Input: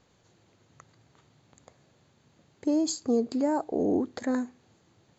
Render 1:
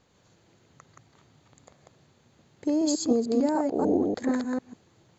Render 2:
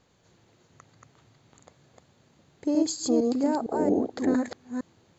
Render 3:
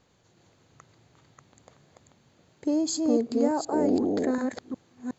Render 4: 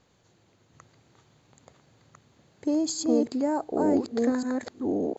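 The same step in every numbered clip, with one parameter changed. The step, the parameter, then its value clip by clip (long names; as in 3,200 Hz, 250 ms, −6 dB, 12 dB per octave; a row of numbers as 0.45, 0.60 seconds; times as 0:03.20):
delay that plays each chunk backwards, delay time: 148, 229, 365, 738 milliseconds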